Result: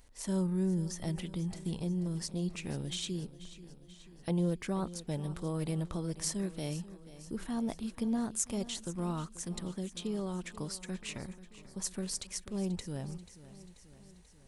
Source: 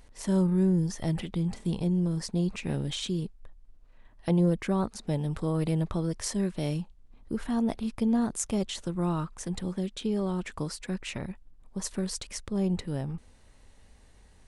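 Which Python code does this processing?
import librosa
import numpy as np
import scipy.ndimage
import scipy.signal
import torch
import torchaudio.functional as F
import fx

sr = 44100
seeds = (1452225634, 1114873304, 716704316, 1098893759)

y = fx.high_shelf(x, sr, hz=4600.0, db=8.5)
y = fx.echo_feedback(y, sr, ms=486, feedback_pct=60, wet_db=-16.0)
y = y * librosa.db_to_amplitude(-7.0)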